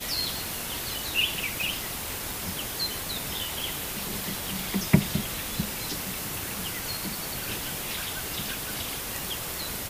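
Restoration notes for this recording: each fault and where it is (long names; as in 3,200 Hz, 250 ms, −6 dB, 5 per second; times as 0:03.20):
0:01.61: click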